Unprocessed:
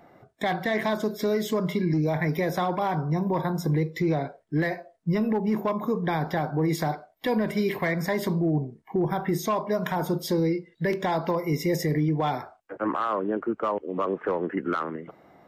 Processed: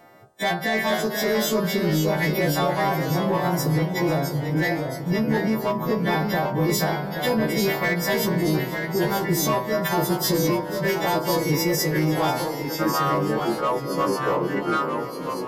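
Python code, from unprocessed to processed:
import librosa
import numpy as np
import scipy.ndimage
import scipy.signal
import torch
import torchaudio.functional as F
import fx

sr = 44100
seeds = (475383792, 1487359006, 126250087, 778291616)

p1 = fx.freq_snap(x, sr, grid_st=2)
p2 = 10.0 ** (-21.5 / 20.0) * (np.abs((p1 / 10.0 ** (-21.5 / 20.0) + 3.0) % 4.0 - 2.0) - 1.0)
p3 = p1 + (p2 * 10.0 ** (-8.0 / 20.0))
p4 = fx.echo_alternate(p3, sr, ms=247, hz=1500.0, feedback_pct=80, wet_db=-13.5)
y = fx.echo_pitch(p4, sr, ms=447, semitones=-1, count=3, db_per_echo=-6.0)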